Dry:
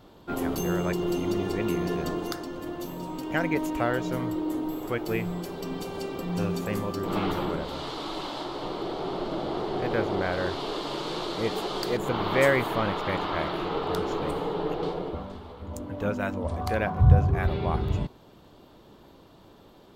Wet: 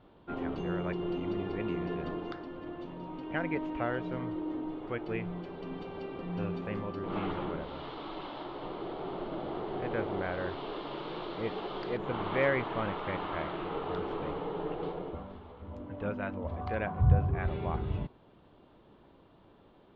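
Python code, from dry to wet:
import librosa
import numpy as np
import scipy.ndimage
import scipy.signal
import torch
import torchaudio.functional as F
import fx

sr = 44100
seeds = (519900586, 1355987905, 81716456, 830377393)

y = scipy.signal.sosfilt(scipy.signal.butter(4, 3200.0, 'lowpass', fs=sr, output='sos'), x)
y = F.gain(torch.from_numpy(y), -6.5).numpy()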